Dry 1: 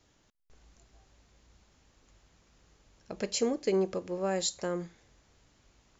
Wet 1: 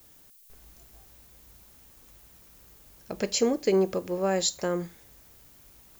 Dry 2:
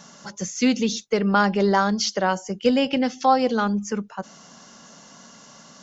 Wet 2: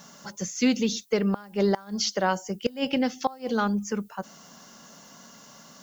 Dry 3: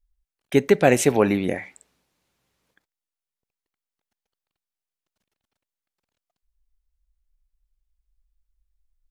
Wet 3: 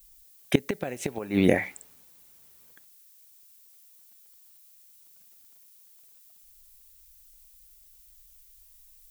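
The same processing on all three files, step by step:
flipped gate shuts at -9 dBFS, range -24 dB; added noise violet -61 dBFS; match loudness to -27 LUFS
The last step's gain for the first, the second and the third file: +5.0, -2.5, +5.0 dB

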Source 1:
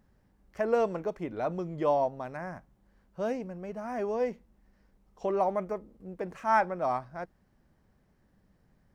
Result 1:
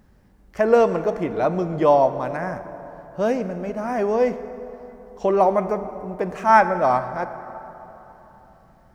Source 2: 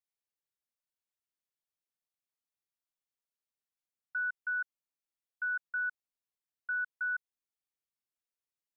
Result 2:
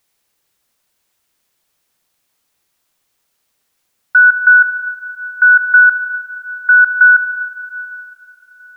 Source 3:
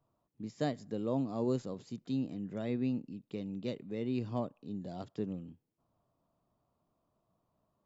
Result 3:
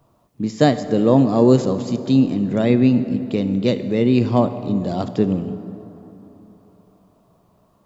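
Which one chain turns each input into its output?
plate-style reverb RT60 3.6 s, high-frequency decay 0.5×, DRR 10.5 dB; normalise peaks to -1.5 dBFS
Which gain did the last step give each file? +10.5, +26.5, +19.0 dB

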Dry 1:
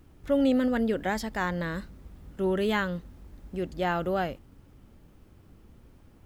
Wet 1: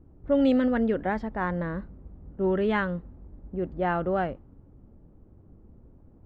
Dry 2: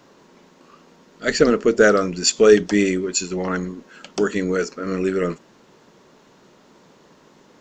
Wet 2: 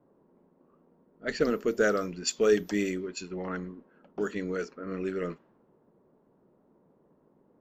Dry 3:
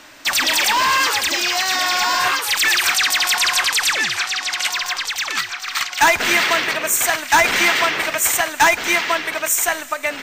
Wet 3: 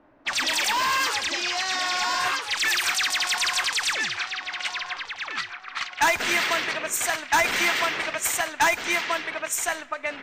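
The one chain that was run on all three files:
whine 14000 Hz -51 dBFS; low-pass opened by the level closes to 650 Hz, open at -13.5 dBFS; normalise peaks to -12 dBFS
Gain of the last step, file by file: +2.0, -11.0, -7.0 dB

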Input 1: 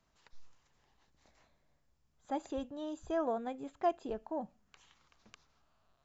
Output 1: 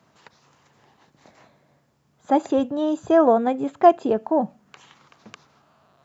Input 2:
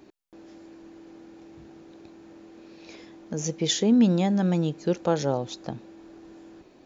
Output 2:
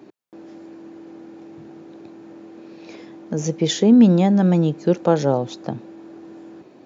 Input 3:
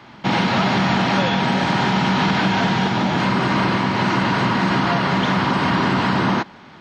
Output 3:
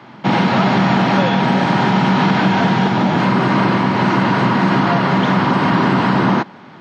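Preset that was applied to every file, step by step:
HPF 110 Hz 24 dB/oct; high shelf 2100 Hz -8 dB; normalise peaks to -3 dBFS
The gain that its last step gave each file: +18.5, +7.5, +5.0 dB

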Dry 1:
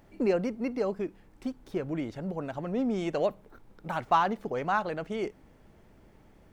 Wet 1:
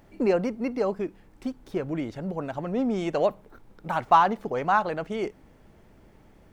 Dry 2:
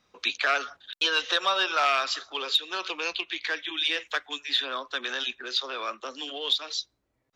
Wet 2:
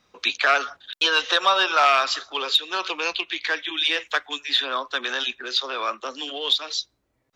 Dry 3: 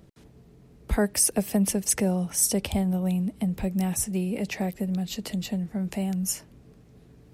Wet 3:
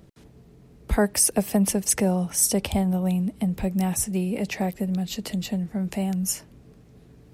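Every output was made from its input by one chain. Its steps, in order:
dynamic EQ 920 Hz, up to +4 dB, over -38 dBFS, Q 1.3; normalise peaks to -6 dBFS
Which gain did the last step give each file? +2.5, +4.0, +2.0 dB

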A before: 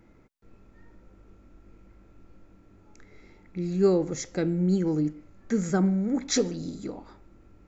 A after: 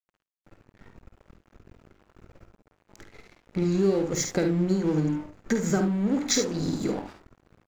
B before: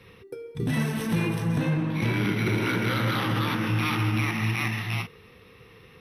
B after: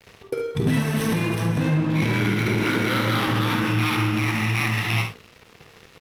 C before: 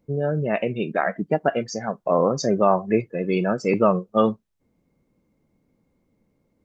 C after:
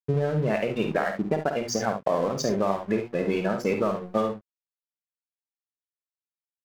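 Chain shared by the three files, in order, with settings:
notches 60/120/180/240/300/360 Hz; compressor 10:1, threshold -31 dBFS; crossover distortion -49 dBFS; on a send: early reflections 51 ms -8 dB, 71 ms -9.5 dB; on the sum: normalise peaks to -9 dBFS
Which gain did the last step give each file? +10.5, +13.0, +10.0 dB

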